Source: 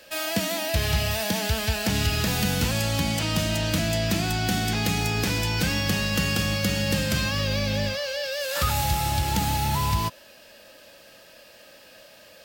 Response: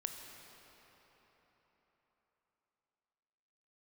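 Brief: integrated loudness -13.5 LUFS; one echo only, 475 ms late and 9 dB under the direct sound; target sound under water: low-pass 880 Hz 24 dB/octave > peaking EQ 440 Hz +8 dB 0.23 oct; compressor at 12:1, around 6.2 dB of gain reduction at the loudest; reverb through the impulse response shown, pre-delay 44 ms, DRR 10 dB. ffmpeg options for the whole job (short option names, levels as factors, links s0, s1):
-filter_complex "[0:a]acompressor=threshold=0.0562:ratio=12,aecho=1:1:475:0.355,asplit=2[s0][s1];[1:a]atrim=start_sample=2205,adelay=44[s2];[s1][s2]afir=irnorm=-1:irlink=0,volume=0.335[s3];[s0][s3]amix=inputs=2:normalize=0,lowpass=f=880:w=0.5412,lowpass=f=880:w=1.3066,equalizer=f=440:t=o:w=0.23:g=8,volume=7.5"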